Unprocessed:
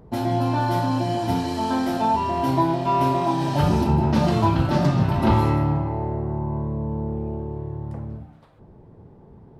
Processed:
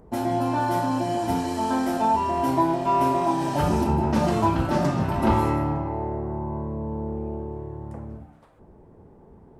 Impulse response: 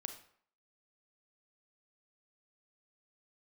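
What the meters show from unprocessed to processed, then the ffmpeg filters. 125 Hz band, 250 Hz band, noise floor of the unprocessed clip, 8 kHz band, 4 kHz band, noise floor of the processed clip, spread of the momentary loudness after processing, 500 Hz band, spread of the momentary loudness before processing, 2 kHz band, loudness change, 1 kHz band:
−6.0 dB, −2.0 dB, −49 dBFS, can't be measured, −4.5 dB, −51 dBFS, 12 LU, −0.5 dB, 11 LU, −1.0 dB, −2.0 dB, −0.5 dB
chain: -af "equalizer=frequency=125:width_type=o:width=1:gain=-8,equalizer=frequency=4000:width_type=o:width=1:gain=-7,equalizer=frequency=8000:width_type=o:width=1:gain=5"

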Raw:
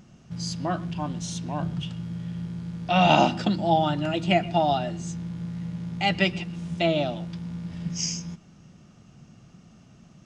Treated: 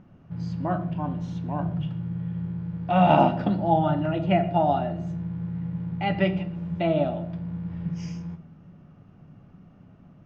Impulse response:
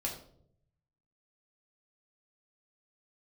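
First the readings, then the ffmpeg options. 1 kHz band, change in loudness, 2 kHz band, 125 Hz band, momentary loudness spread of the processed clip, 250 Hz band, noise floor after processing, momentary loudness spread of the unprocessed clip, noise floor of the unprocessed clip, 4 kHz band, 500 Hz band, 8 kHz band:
+0.5 dB, +0.5 dB, −6.0 dB, +2.0 dB, 12 LU, +1.5 dB, −53 dBFS, 13 LU, −53 dBFS, −11.0 dB, +1.0 dB, below −20 dB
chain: -filter_complex "[0:a]lowpass=1600,asplit=2[link_01][link_02];[1:a]atrim=start_sample=2205[link_03];[link_02][link_03]afir=irnorm=-1:irlink=0,volume=-5dB[link_04];[link_01][link_04]amix=inputs=2:normalize=0,volume=-3dB"

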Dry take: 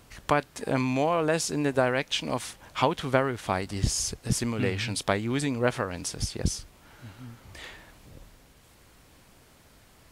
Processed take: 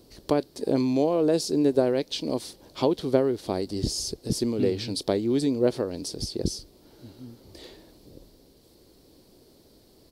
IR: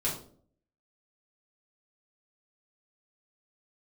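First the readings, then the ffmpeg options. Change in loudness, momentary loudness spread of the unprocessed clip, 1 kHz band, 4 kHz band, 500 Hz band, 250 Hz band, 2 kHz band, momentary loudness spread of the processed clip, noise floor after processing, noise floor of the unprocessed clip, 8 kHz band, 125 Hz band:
+2.0 dB, 16 LU, −6.5 dB, −0.5 dB, +4.0 dB, +4.5 dB, −12.5 dB, 9 LU, −57 dBFS, −57 dBFS, −4.0 dB, −3.0 dB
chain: -af "firequalizer=gain_entry='entry(110,0);entry(350,13);entry(730,0);entry(1300,-9);entry(1800,-9);entry(2600,-7);entry(4400,9);entry(6700,-2);entry(13000,4)':delay=0.05:min_phase=1,volume=-4dB"

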